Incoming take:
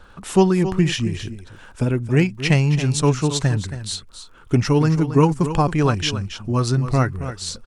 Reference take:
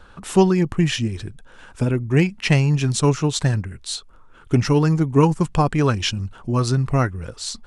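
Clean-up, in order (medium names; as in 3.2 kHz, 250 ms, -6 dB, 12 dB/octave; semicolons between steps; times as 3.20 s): de-click; inverse comb 274 ms -11.5 dB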